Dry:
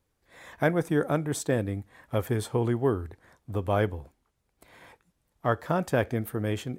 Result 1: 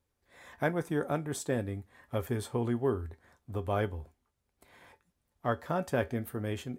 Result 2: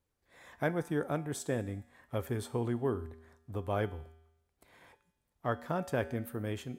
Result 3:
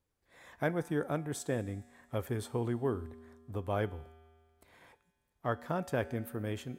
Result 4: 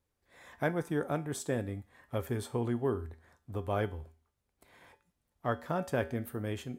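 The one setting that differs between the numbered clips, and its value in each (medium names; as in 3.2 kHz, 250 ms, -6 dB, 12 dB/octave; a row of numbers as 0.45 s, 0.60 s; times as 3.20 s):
feedback comb, decay: 0.16 s, 0.9 s, 1.9 s, 0.4 s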